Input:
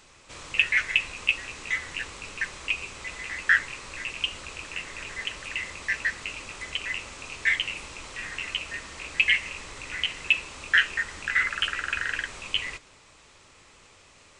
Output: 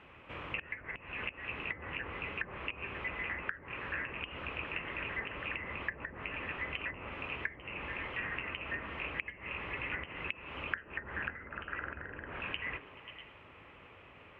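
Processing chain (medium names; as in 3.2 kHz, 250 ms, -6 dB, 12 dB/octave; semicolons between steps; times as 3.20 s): high-pass 57 Hz; resonant high shelf 3.5 kHz -6 dB, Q 3; on a send: repeats whose band climbs or falls 107 ms, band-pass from 310 Hz, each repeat 0.7 oct, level -8.5 dB; on the sum: compression 10:1, threshold -24 dBFS, peak gain reduction 14 dB; in parallel at -9 dB: saturation -25 dBFS, distortion -9 dB; on the sum: distance through air 500 m; low-pass that closes with the level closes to 640 Hz, closed at -28.5 dBFS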